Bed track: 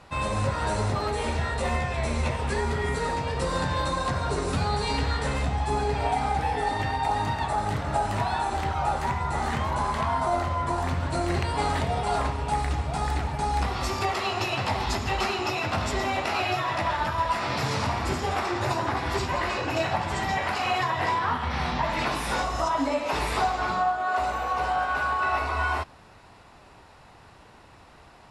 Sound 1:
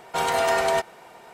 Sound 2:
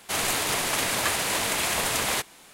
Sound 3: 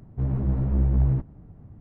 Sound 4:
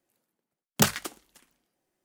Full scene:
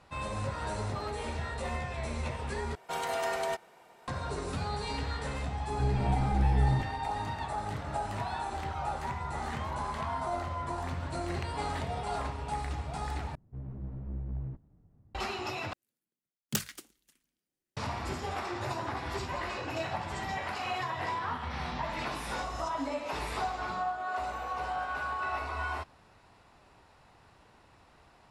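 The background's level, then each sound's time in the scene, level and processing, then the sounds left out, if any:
bed track -8.5 dB
2.75 replace with 1 -10.5 dB
5.61 add 3 -5 dB
13.35 replace with 3 -16 dB
15.73 replace with 4 -8.5 dB + bell 770 Hz -11 dB 1.7 oct
not used: 2

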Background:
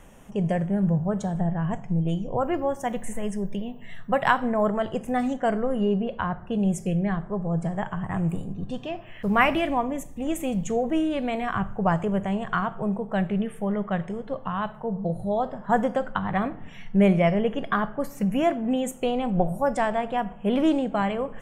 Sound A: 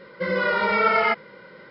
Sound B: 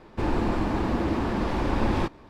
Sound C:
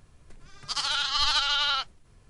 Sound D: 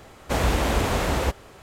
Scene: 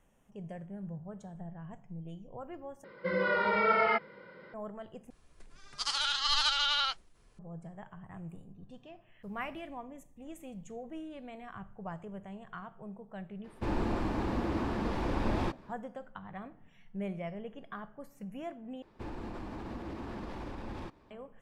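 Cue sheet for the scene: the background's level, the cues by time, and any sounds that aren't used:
background -19 dB
2.84 replace with A -6 dB + high shelf 4000 Hz -10.5 dB
5.1 replace with C -4 dB + bell 100 Hz -10 dB 1.5 oct
13.44 add B -7 dB
18.82 replace with B -12.5 dB + limiter -20.5 dBFS
not used: D

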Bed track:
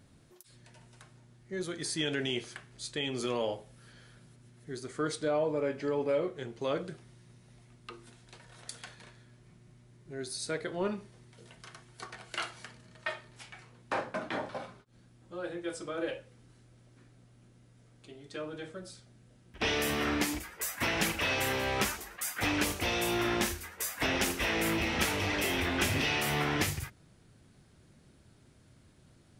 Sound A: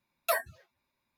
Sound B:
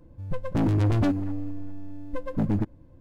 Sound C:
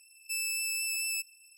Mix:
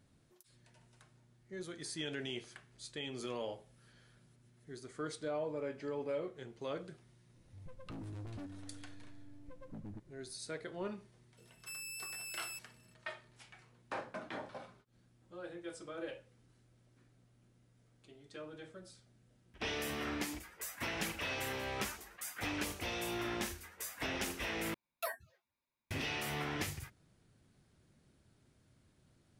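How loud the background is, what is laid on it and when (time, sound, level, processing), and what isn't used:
bed track -8.5 dB
7.35 add B -17 dB + compressor 2.5:1, threshold -30 dBFS
11.37 add C -12.5 dB
24.74 replace with A -11 dB

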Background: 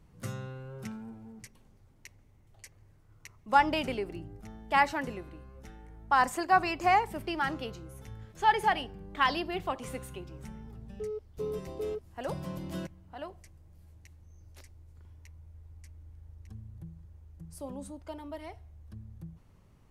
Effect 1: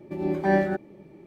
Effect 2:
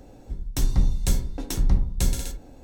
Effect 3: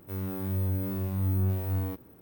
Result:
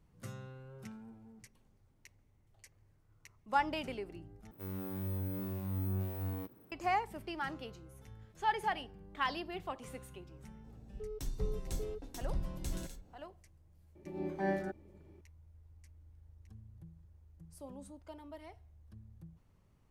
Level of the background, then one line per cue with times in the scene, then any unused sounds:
background -8 dB
4.51 replace with 3 -6.5 dB + HPF 95 Hz
10.64 add 2 -17 dB
13.95 add 1 -12.5 dB

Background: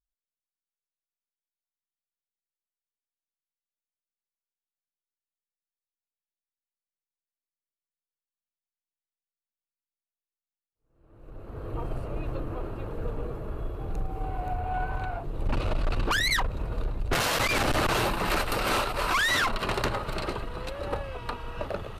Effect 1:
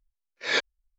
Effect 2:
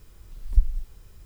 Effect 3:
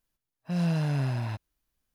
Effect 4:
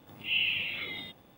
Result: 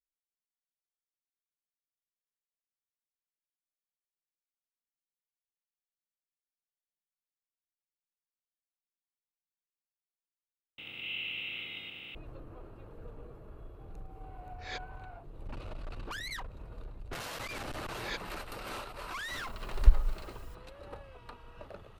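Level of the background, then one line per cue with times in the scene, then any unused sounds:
background -15 dB
10.78 replace with 4 -13.5 dB + per-bin compression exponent 0.2
14.18 add 1 -17.5 dB
17.57 add 1 -14.5 dB
19.3 add 2 -1 dB
not used: 3

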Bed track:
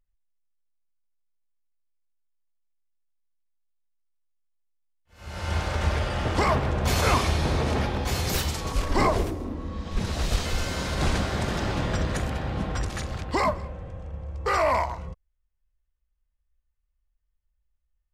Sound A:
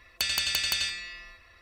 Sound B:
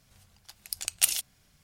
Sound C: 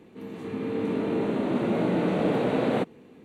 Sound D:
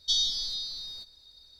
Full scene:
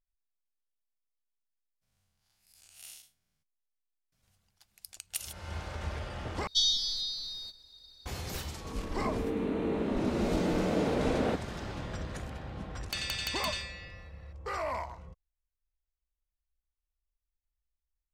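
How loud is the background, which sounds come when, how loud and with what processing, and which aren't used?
bed track -12 dB
1.81 add B -16.5 dB, fades 0.02 s + time blur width 0.133 s
4.12 add B -13 dB
6.47 replace with D -0.5 dB
8.52 add C -5 dB
12.72 add A -5.5 dB + high shelf 4900 Hz -5.5 dB

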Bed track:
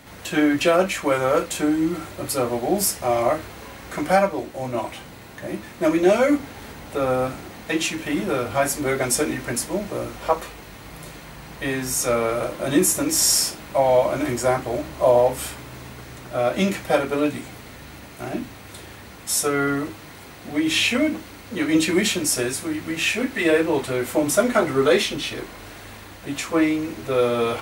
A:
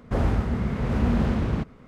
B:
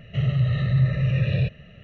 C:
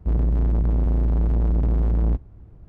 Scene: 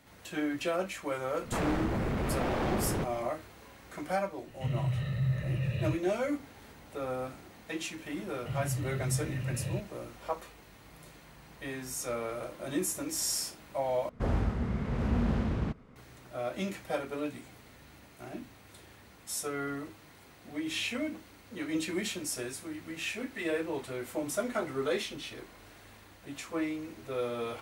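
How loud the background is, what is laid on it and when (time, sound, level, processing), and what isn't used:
bed track -14 dB
1.41 add A -17.5 dB + sine folder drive 15 dB, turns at -10.5 dBFS
4.47 add B -10 dB
8.32 add B -13 dB
14.09 replace with A -6.5 dB
not used: C

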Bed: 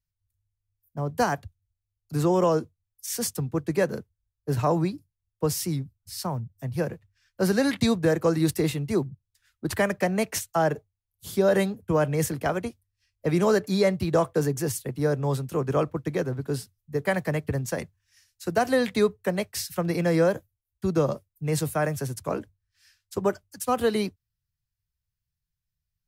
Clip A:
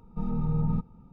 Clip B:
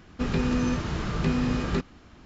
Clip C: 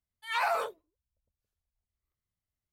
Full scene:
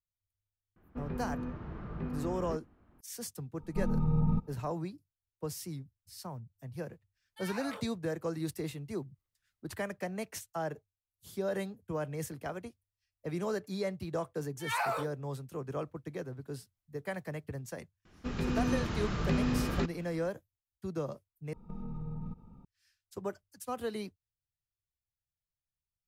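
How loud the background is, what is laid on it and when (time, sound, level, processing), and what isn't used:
bed -13 dB
0.76 add B -12.5 dB + LPF 1400 Hz
3.59 add A -1.5 dB
7.14 add C -2.5 dB + compressor 2.5:1, threshold -44 dBFS
14.37 add C -3.5 dB
18.05 add B -9.5 dB + AGC gain up to 5 dB
21.53 replace with A -2.5 dB + compressor, threshold -34 dBFS

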